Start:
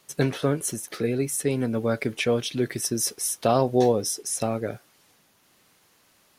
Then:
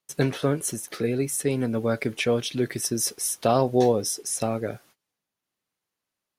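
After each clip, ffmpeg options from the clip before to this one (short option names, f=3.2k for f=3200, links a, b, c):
-af "agate=range=-24dB:threshold=-53dB:ratio=16:detection=peak"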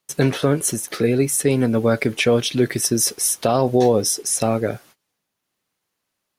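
-af "alimiter=level_in=13dB:limit=-1dB:release=50:level=0:latency=1,volume=-5.5dB"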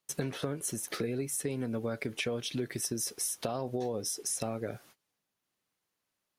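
-af "acompressor=threshold=-24dB:ratio=6,volume=-7dB"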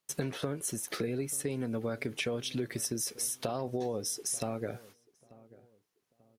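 -filter_complex "[0:a]asplit=2[a][b];[b]adelay=889,lowpass=f=1.1k:p=1,volume=-20.5dB,asplit=2[c][d];[d]adelay=889,lowpass=f=1.1k:p=1,volume=0.35,asplit=2[e][f];[f]adelay=889,lowpass=f=1.1k:p=1,volume=0.35[g];[a][c][e][g]amix=inputs=4:normalize=0"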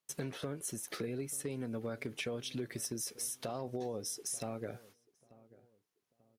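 -af "asoftclip=type=hard:threshold=-24.5dB,volume=-5dB"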